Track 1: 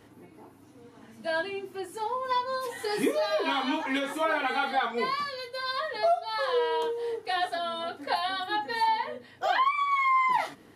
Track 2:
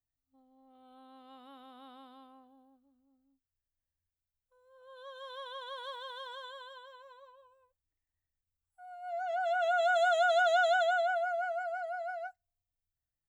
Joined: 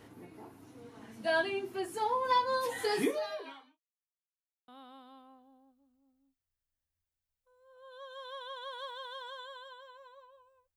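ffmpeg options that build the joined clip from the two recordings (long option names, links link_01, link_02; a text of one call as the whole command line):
ffmpeg -i cue0.wav -i cue1.wav -filter_complex "[0:a]apad=whole_dur=10.76,atrim=end=10.76,asplit=2[link_01][link_02];[link_01]atrim=end=3.8,asetpts=PTS-STARTPTS,afade=type=out:start_time=2.86:duration=0.94:curve=qua[link_03];[link_02]atrim=start=3.8:end=4.68,asetpts=PTS-STARTPTS,volume=0[link_04];[1:a]atrim=start=1.73:end=7.81,asetpts=PTS-STARTPTS,afade=type=in:duration=0.004:curve=hsin[link_05];[link_03][link_04][link_05]concat=n=3:v=0:a=1" out.wav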